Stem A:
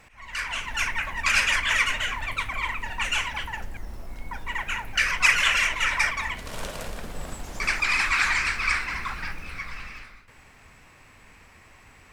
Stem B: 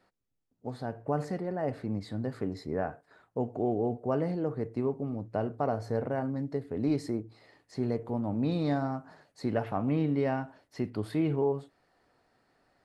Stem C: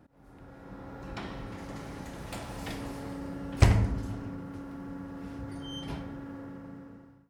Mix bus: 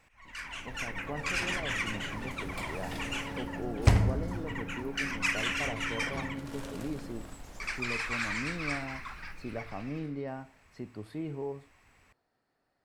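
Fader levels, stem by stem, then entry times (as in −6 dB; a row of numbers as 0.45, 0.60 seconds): −11.0, −9.0, −1.5 decibels; 0.00, 0.00, 0.25 seconds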